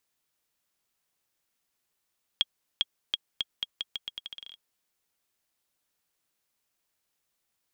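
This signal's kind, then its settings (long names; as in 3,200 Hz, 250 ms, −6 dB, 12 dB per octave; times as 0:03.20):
bouncing ball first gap 0.40 s, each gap 0.82, 3,280 Hz, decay 32 ms −10.5 dBFS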